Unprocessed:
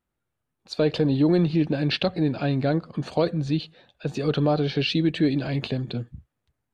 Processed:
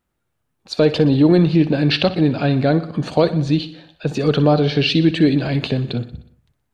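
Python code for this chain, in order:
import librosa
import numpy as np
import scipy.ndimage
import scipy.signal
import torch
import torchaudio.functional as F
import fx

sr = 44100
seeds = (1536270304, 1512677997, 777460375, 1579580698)

y = fx.echo_feedback(x, sr, ms=61, feedback_pct=58, wet_db=-15.0)
y = y * 10.0 ** (7.0 / 20.0)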